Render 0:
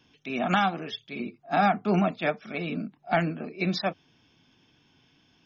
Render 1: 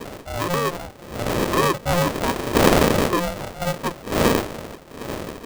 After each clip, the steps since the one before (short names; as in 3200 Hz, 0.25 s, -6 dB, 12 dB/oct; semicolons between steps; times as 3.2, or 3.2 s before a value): wind noise 240 Hz -27 dBFS; Chebyshev low-pass 970 Hz, order 6; polarity switched at an audio rate 350 Hz; gain +3.5 dB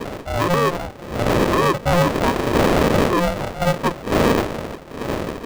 limiter -14.5 dBFS, peak gain reduction 11 dB; high shelf 4900 Hz -8.5 dB; gain +6 dB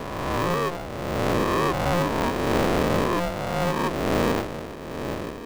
spectral swells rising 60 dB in 1.89 s; gain -9 dB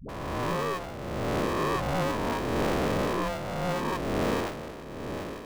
dispersion highs, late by 90 ms, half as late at 360 Hz; gain -5 dB